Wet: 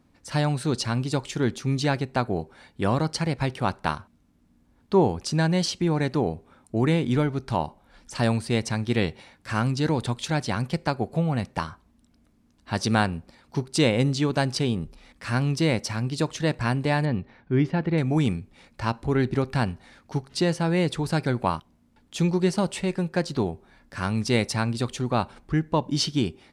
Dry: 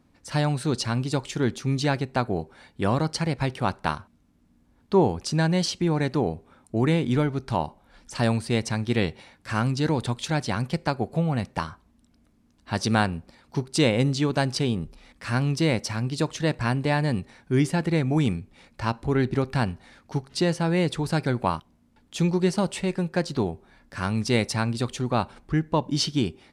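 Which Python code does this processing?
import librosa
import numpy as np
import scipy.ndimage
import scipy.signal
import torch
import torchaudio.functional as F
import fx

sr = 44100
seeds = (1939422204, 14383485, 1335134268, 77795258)

y = fx.air_absorb(x, sr, metres=270.0, at=(17.05, 17.98))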